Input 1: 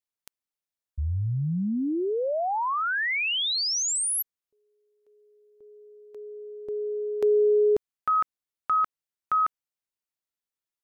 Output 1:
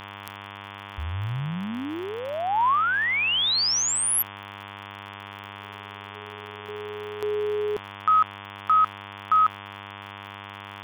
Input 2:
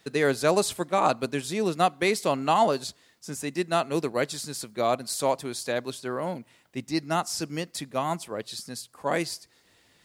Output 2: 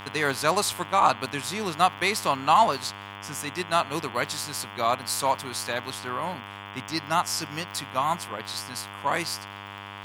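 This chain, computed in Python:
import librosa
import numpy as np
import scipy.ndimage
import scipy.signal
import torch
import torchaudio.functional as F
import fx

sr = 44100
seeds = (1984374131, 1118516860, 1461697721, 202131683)

y = fx.dmg_buzz(x, sr, base_hz=100.0, harmonics=35, level_db=-41.0, tilt_db=-3, odd_only=False)
y = fx.high_shelf(y, sr, hz=2100.0, db=12.0)
y = fx.dmg_crackle(y, sr, seeds[0], per_s=53.0, level_db=-31.0)
y = fx.graphic_eq_10(y, sr, hz=(125, 500, 1000, 8000), db=(3, -4, 10, -5))
y = y * librosa.db_to_amplitude(-5.0)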